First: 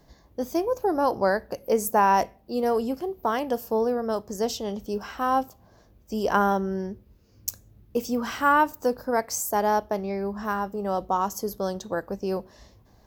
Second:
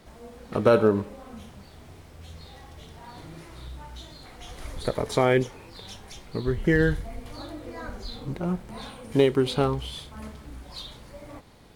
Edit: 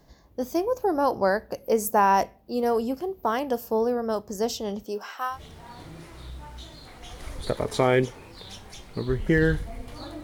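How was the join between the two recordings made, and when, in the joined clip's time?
first
0:04.82–0:05.39: high-pass filter 200 Hz → 1,500 Hz
0:05.33: continue with second from 0:02.71, crossfade 0.12 s

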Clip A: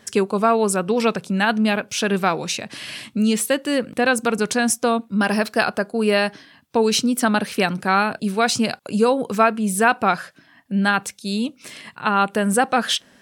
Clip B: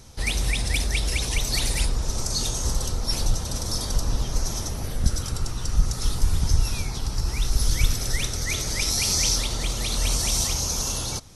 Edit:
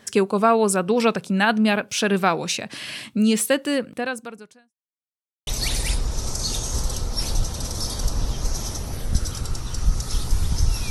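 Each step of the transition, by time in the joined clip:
clip A
0:03.63–0:04.74: fade out quadratic
0:04.74–0:05.47: silence
0:05.47: continue with clip B from 0:01.38

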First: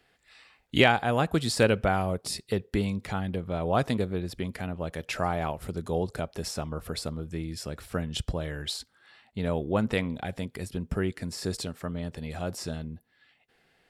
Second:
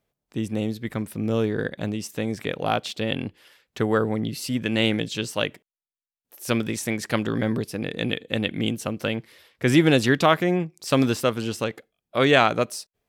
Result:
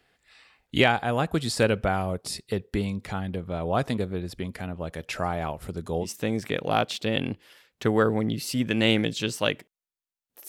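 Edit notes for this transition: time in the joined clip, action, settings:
first
0:06.05: continue with second from 0:02.00, crossfade 0.10 s

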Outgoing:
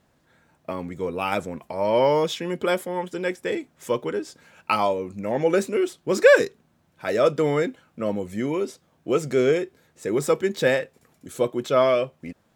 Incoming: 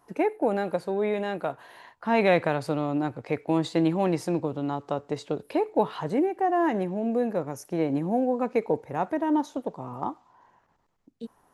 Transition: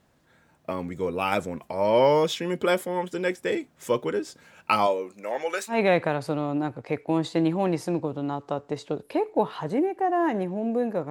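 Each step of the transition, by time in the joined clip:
outgoing
0:04.86–0:05.79: high-pass filter 270 Hz → 1,400 Hz
0:05.73: continue with incoming from 0:02.13, crossfade 0.12 s

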